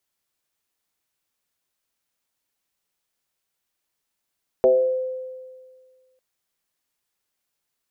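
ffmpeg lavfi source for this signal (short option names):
-f lavfi -i "aevalsrc='0.282*pow(10,-3*t/1.79)*sin(2*PI*515*t+0.98*pow(10,-3*t/0.74)*sin(2*PI*0.26*515*t))':d=1.55:s=44100"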